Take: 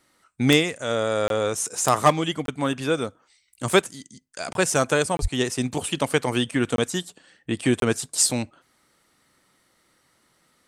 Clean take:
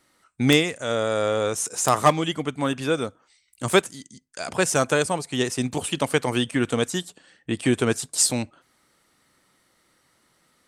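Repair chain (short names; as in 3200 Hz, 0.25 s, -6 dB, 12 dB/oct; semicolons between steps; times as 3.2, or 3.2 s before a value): de-plosive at 5.21; interpolate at 1.28/2.46/4.53/5.17/6.76/7.8, 22 ms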